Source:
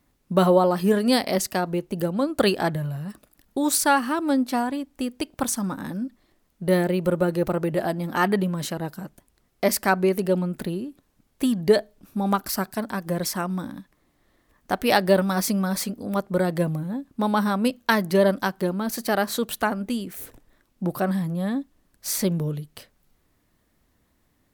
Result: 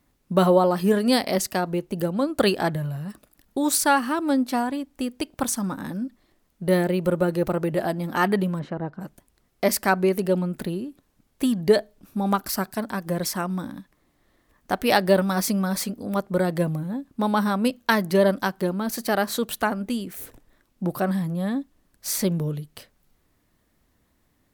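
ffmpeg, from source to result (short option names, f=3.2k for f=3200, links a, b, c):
-filter_complex "[0:a]asplit=3[a][b][c];[a]afade=t=out:st=8.58:d=0.02[d];[b]lowpass=1.5k,afade=t=in:st=8.58:d=0.02,afade=t=out:st=9:d=0.02[e];[c]afade=t=in:st=9:d=0.02[f];[d][e][f]amix=inputs=3:normalize=0"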